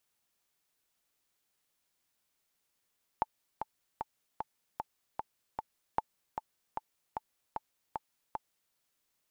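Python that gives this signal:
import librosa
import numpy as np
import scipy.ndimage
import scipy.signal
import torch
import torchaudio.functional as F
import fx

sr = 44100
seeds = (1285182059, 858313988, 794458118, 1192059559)

y = fx.click_track(sr, bpm=152, beats=7, bars=2, hz=874.0, accent_db=7.0, level_db=-15.0)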